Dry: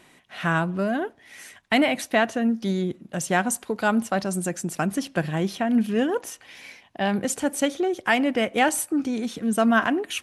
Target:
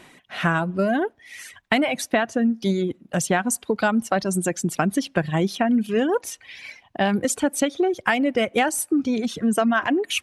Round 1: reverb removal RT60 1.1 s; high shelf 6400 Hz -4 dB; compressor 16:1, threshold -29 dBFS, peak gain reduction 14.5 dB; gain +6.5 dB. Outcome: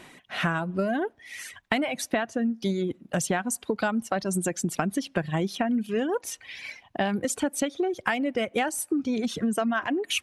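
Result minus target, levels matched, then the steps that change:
compressor: peak gain reduction +6 dB
change: compressor 16:1, threshold -22.5 dBFS, peak gain reduction 8.5 dB

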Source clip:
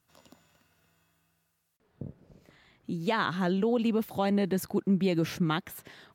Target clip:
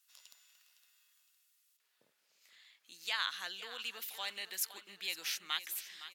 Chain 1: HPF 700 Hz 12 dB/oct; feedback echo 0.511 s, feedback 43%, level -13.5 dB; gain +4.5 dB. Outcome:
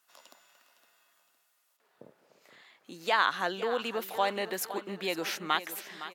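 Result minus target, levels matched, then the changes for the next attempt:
500 Hz band +16.0 dB
change: HPF 2800 Hz 12 dB/oct

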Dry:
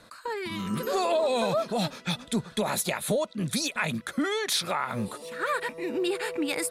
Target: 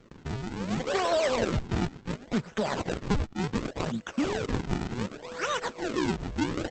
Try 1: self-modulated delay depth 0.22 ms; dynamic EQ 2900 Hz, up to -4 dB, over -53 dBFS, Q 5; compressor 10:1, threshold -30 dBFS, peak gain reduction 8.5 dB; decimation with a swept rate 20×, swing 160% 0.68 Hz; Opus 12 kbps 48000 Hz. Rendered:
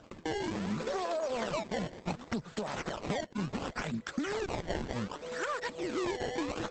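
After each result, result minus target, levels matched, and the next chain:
compressor: peak gain reduction +8.5 dB; decimation with a swept rate: distortion -6 dB
self-modulated delay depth 0.22 ms; dynamic EQ 2900 Hz, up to -4 dB, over -53 dBFS, Q 5; decimation with a swept rate 20×, swing 160% 0.68 Hz; Opus 12 kbps 48000 Hz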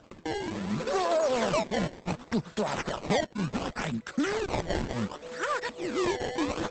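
decimation with a swept rate: distortion -7 dB
self-modulated delay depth 0.22 ms; dynamic EQ 2900 Hz, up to -4 dB, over -53 dBFS, Q 5; decimation with a swept rate 46×, swing 160% 0.68 Hz; Opus 12 kbps 48000 Hz

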